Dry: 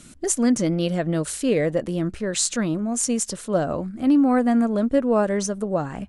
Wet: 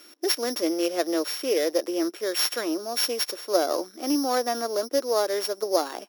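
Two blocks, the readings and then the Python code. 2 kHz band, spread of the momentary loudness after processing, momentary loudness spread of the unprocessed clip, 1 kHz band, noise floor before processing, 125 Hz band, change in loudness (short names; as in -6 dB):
-1.0 dB, 4 LU, 7 LU, -0.5 dB, -43 dBFS, under -30 dB, -3.5 dB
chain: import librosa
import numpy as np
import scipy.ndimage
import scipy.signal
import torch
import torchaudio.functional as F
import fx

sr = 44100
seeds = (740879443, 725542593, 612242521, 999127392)

y = np.r_[np.sort(x[:len(x) // 8 * 8].reshape(-1, 8), axis=1).ravel(), x[len(x) // 8 * 8:]]
y = scipy.signal.sosfilt(scipy.signal.ellip(4, 1.0, 70, 330.0, 'highpass', fs=sr, output='sos'), y)
y = fx.rider(y, sr, range_db=10, speed_s=0.5)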